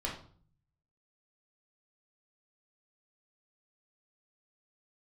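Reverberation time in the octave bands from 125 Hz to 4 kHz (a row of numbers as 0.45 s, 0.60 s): 1.0 s, 0.70 s, 0.50 s, 0.45 s, 0.35 s, 0.40 s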